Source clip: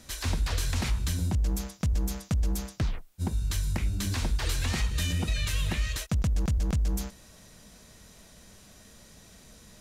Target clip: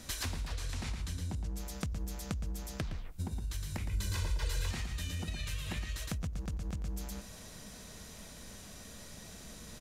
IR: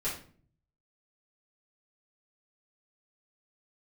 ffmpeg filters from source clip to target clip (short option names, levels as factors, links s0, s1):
-filter_complex "[0:a]aecho=1:1:114:0.531,asplit=2[s0][s1];[1:a]atrim=start_sample=2205[s2];[s1][s2]afir=irnorm=-1:irlink=0,volume=0.0562[s3];[s0][s3]amix=inputs=2:normalize=0,acompressor=threshold=0.0158:ratio=12,asettb=1/sr,asplit=3[s4][s5][s6];[s4]atrim=end=0.544[s7];[s5]atrim=start=0.54:end=1.58,asetpts=PTS-STARTPTS,afade=t=in:d=0.004:c=qsin,afade=t=out:st=1.036:d=0.004:c=qsin,lowpass=11000[s8];[s6]atrim=start=1.576[s9];[s7][s8]acrossfade=d=0.004:c1=hsin:c2=qsin[s10];[s10][s9]acrossfade=d=0.004:c1=qsin:c2=hsin,asettb=1/sr,asplit=3[s11][s12][s13];[s11]atrim=end=3.884[s14];[s12]atrim=start=3.88:end=4.71,asetpts=PTS-STARTPTS,afade=t=in:d=0.004:c=qsin,afade=t=out:st=0.826:d=0.004:c=qsin,aecho=1:1:2:0.85,atrim=end_sample=36603[s15];[s13]atrim=start=4.706[s16];[s14][s15]acrossfade=d=0.004:c1=hsin:c2=qsin[s17];[s17][s16]acrossfade=d=0.004:c1=qsin:c2=hsin,volume=1.26"